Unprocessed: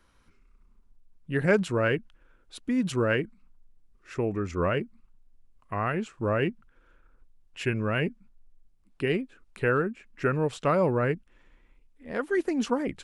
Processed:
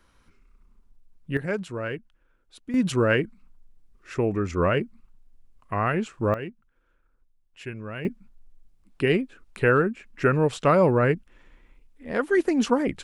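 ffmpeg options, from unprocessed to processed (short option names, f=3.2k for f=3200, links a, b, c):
-af "asetnsamples=n=441:p=0,asendcmd='1.37 volume volume -6dB;2.74 volume volume 4dB;6.34 volume volume -8dB;8.05 volume volume 5dB',volume=2.5dB"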